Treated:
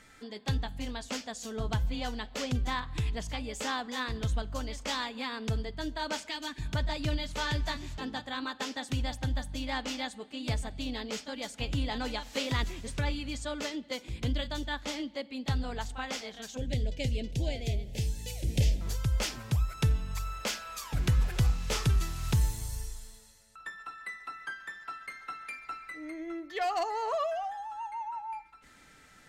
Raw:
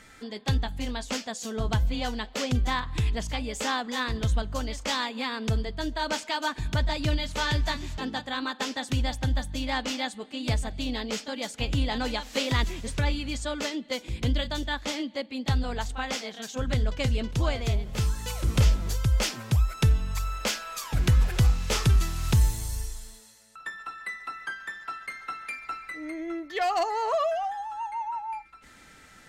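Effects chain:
0:06.30–0:06.61: gain on a spectral selection 400–1,600 Hz −8 dB
0:16.57–0:18.81: Butterworth band-reject 1,200 Hz, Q 0.89
rectangular room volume 3,800 cubic metres, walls furnished, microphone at 0.34 metres
level −5 dB

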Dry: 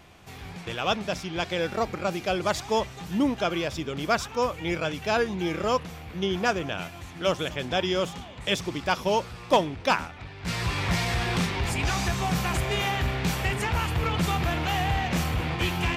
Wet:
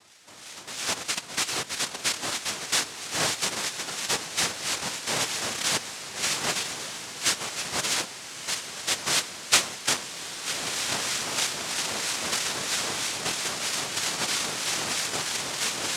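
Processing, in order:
0:01.17–0:02.72: reverse
0:08.01–0:08.79: high-pass filter 780 Hz
cochlear-implant simulation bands 1
two-band tremolo in antiphase 3.1 Hz, depth 50%, crossover 1,300 Hz
feedback delay with all-pass diffusion 1,292 ms, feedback 56%, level −10 dB

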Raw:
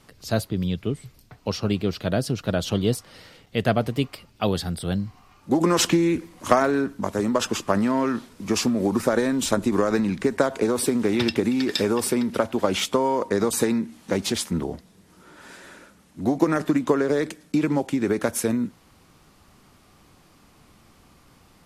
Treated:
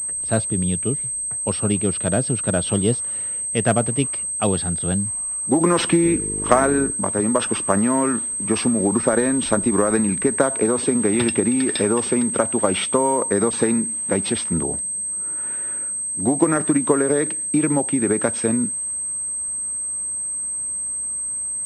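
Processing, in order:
0:06.03–0:06.90: hum with harmonics 50 Hz, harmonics 9, −33 dBFS 0 dB per octave
low-pass that shuts in the quiet parts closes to 2,500 Hz, open at −21 dBFS
switching amplifier with a slow clock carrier 8,300 Hz
level +2.5 dB

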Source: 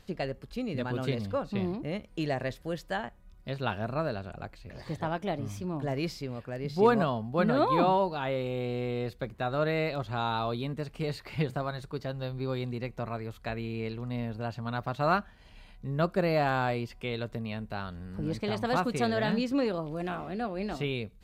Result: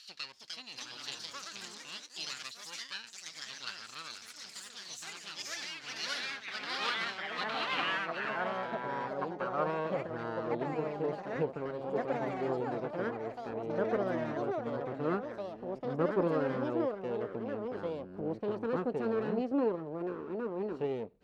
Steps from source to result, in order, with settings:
lower of the sound and its delayed copy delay 0.71 ms
band-pass filter sweep 4,500 Hz → 460 Hz, 0:07.18–0:10.20
delay with pitch and tempo change per echo 333 ms, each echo +3 semitones, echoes 3
one half of a high-frequency compander encoder only
level +6.5 dB

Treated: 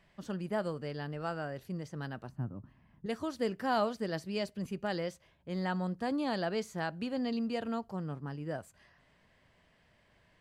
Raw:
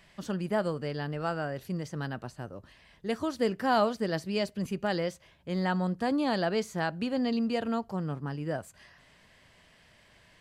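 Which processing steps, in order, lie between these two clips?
0:02.29–0:03.06: graphic EQ with 10 bands 125 Hz +10 dB, 250 Hz +9 dB, 500 Hz −9 dB, 1,000 Hz +3 dB, 2,000 Hz −4 dB, 4,000 Hz −11 dB, 8,000 Hz −11 dB
one half of a high-frequency compander decoder only
level −5 dB

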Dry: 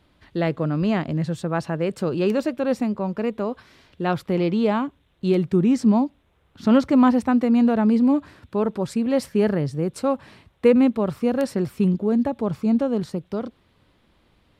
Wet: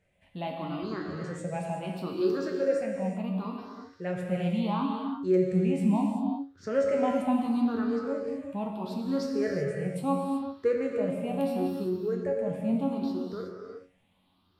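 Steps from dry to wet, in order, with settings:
rippled gain that drifts along the octave scale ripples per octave 0.52, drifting +0.73 Hz, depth 17 dB
low-shelf EQ 65 Hz −7 dB
tuned comb filter 92 Hz, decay 0.28 s, harmonics all, mix 80%
reverb whose tail is shaped and stops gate 400 ms flat, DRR 0.5 dB
level −6.5 dB

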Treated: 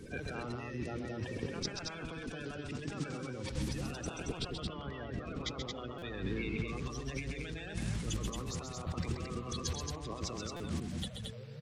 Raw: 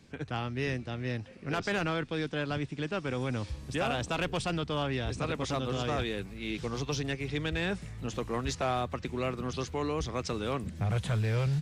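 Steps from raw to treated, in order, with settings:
spectral magnitudes quantised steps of 30 dB
0:04.37–0:06.68: low-pass filter 3,000 Hz 12 dB per octave
compressor whose output falls as the input rises −44 dBFS, ratio −1
loudspeakers that aren't time-aligned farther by 45 metres −6 dB, 77 metres −4 dB
buffer that repeats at 0:05.98/0:10.56, samples 256, times 6
level +1 dB

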